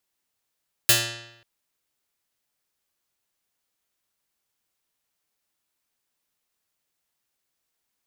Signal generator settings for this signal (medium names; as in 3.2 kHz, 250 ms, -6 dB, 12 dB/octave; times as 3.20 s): plucked string A#2, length 0.54 s, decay 0.87 s, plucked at 0.45, medium